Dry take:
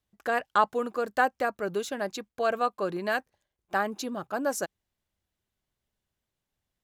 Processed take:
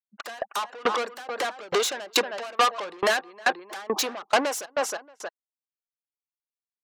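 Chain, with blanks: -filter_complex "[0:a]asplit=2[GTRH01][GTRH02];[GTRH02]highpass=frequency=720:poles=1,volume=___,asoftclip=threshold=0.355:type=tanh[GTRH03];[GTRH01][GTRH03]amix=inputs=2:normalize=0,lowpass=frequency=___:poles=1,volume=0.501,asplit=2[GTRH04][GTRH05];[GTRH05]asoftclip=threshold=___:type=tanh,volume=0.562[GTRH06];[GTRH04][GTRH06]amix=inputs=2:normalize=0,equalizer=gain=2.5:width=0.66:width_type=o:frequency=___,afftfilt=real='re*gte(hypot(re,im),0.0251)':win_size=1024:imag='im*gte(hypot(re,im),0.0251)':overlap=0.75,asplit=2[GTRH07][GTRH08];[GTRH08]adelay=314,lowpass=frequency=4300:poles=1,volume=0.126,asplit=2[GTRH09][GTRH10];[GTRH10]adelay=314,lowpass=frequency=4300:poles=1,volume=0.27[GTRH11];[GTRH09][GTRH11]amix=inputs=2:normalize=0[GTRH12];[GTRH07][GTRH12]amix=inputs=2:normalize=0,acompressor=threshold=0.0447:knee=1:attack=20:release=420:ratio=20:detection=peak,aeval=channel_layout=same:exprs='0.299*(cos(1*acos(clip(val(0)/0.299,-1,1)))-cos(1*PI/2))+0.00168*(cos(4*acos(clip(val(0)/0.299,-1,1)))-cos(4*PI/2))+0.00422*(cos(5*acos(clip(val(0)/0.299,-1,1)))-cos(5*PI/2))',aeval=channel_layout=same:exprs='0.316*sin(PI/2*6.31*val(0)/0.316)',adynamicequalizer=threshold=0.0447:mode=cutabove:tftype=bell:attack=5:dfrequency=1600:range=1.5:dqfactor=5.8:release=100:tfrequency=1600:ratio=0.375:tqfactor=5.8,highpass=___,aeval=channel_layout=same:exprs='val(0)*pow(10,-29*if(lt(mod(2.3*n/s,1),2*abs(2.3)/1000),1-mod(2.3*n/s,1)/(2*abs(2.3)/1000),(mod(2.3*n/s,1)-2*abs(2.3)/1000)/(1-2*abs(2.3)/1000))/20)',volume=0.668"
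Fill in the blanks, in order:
22.4, 7700, 0.106, 1100, 400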